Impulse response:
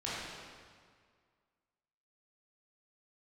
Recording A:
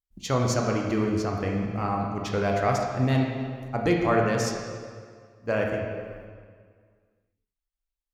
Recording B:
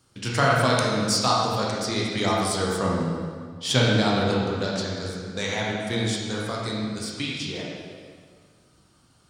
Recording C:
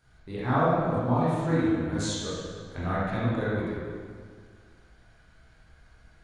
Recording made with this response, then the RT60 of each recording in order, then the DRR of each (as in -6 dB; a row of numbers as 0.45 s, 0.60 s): C; 1.9 s, 1.9 s, 1.9 s; 0.0 dB, -4.5 dB, -9.5 dB